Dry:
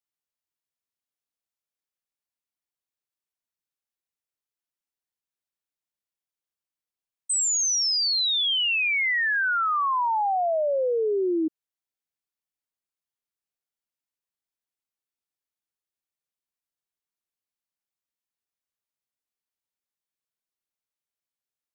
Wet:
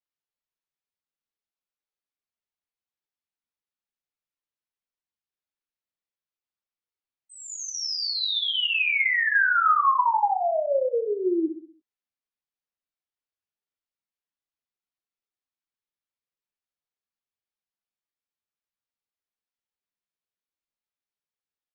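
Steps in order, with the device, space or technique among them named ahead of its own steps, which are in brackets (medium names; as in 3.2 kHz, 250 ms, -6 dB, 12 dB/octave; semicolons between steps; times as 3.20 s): steep low-pass 7 kHz; dynamic bell 1.2 kHz, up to +6 dB, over -38 dBFS, Q 0.83; string-machine ensemble chorus (three-phase chorus; low-pass 4.8 kHz 12 dB/octave); feedback delay 64 ms, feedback 47%, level -9 dB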